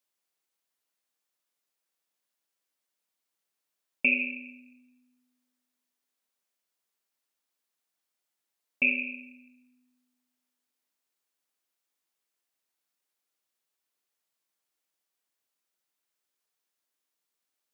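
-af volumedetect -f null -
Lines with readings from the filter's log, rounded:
mean_volume: -41.3 dB
max_volume: -11.8 dB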